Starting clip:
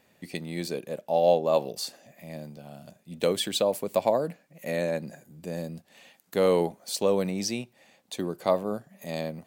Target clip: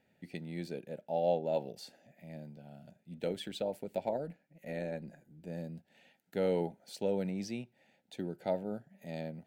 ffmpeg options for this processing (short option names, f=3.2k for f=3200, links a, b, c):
-filter_complex "[0:a]asuperstop=centerf=1100:order=8:qfactor=3.4,bass=f=250:g=10,treble=f=4k:g=-10,asplit=3[a][b][c];[a]afade=t=out:st=3.19:d=0.02[d];[b]tremolo=f=150:d=0.4,afade=t=in:st=3.19:d=0.02,afade=t=out:st=5.48:d=0.02[e];[c]afade=t=in:st=5.48:d=0.02[f];[d][e][f]amix=inputs=3:normalize=0,lowshelf=f=140:g=-11,volume=-9dB"